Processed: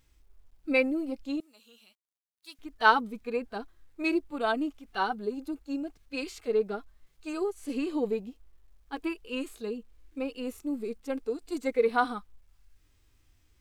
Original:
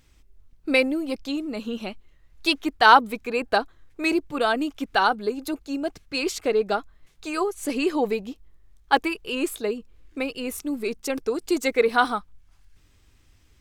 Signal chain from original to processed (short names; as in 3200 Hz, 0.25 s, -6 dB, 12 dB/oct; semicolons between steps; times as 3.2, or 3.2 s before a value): harmonic-percussive split percussive -17 dB; 1.4–2.59 differentiator; bit-crush 12-bit; gain -4 dB